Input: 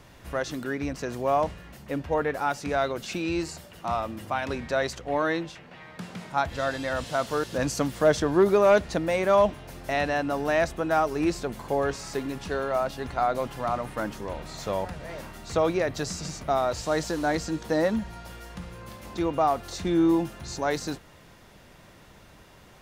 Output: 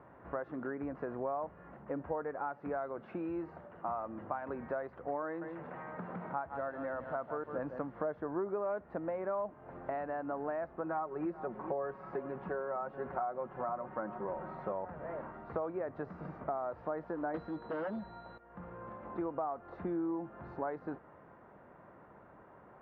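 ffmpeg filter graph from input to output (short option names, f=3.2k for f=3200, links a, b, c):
-filter_complex "[0:a]asettb=1/sr,asplit=3[a][b][c];[a]atrim=end=5.264[d];[b]atrim=start=5.26:end=7.92,asetpts=PTS-STARTPTS,afade=t=in:d=0.004:c=qsin,afade=t=out:st=2.656:d=0.004:c=qsin,aecho=1:1:154:0.299,atrim=end_sample=117306,acompressor=mode=upward:threshold=-32dB:ratio=2.5:attack=3.2:release=140:knee=2.83:detection=peak[e];[c]atrim=start=7.916[f];[d][e]acrossfade=d=0.004:c1=hsin:c2=qsin[g];[g][f]acrossfade=d=0.004:c1=qsin:c2=hsin,asettb=1/sr,asplit=3[h][i][j];[h]atrim=end=10.834[k];[i]atrim=start=10.83:end=14.72,asetpts=PTS-STARTPTS,afade=t=in:d=0.004:c=qsin,afade=t=out:st=3.886:d=0.004:c=qsin,highpass=40,aecho=1:1:5.4:0.5,atrim=end_sample=171549,aecho=1:1:425:0.126,atrim=end_sample=171549[l];[j]atrim=start=14.716[m];[k][l]acrossfade=d=0.004:c1=hsin:c2=qsin[n];[n][m]acrossfade=d=0.004:c1=qsin:c2=hsin,asettb=1/sr,asplit=3[o][p][q];[o]atrim=end=17.344[r];[p]atrim=start=17.34:end=18.38,asetpts=PTS-STARTPTS,afade=t=in:d=0.004:c=qsin,afade=t=out:st=1.036:d=0.004:c=qsin,aeval=exprs='val(0)+0.0398*sin(2*PI*4000*n/s)':c=same,aeval=exprs='0.237*sin(PI/2*3.16*val(0)/0.237)':c=same[s];[q]atrim=start=18.376[t];[r][s]acrossfade=d=0.004:c1=hsin:c2=qsin[u];[u][t]acrossfade=d=0.004:c1=qsin:c2=hsin,highpass=f=340:p=1,acompressor=threshold=-34dB:ratio=6,lowpass=f=1.4k:w=0.5412,lowpass=f=1.4k:w=1.3066"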